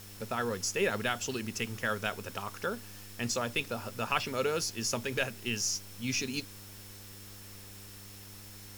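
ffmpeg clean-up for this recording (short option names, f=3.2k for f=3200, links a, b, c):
-af "bandreject=f=100.6:t=h:w=4,bandreject=f=201.2:t=h:w=4,bandreject=f=301.8:t=h:w=4,bandreject=f=402.4:t=h:w=4,bandreject=f=503:t=h:w=4,bandreject=f=5.4k:w=30,afwtdn=0.0028"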